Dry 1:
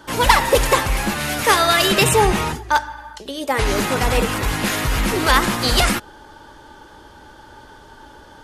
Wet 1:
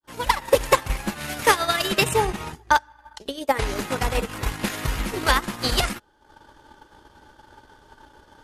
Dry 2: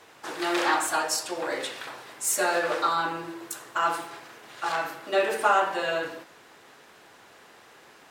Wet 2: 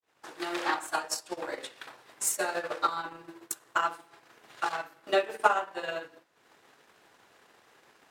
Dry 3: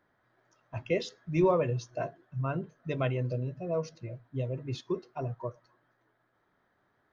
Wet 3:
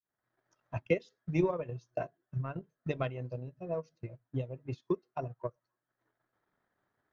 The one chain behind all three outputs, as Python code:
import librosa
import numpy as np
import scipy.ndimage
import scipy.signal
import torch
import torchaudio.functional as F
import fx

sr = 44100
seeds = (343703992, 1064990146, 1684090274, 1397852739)

y = fx.fade_in_head(x, sr, length_s=0.71)
y = fx.transient(y, sr, attack_db=11, sustain_db=-11)
y = y * 10.0 ** (-8.5 / 20.0)